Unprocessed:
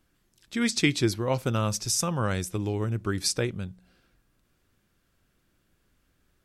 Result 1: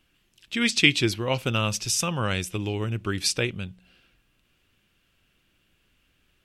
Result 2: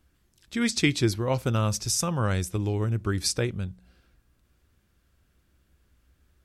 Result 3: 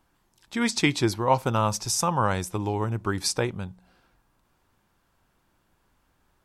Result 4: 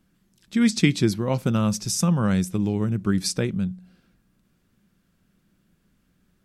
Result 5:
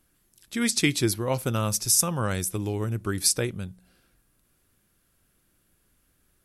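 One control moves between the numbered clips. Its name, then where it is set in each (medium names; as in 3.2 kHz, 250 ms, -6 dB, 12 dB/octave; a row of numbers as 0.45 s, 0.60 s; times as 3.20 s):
peaking EQ, frequency: 2.8 kHz, 65 Hz, 900 Hz, 190 Hz, 11 kHz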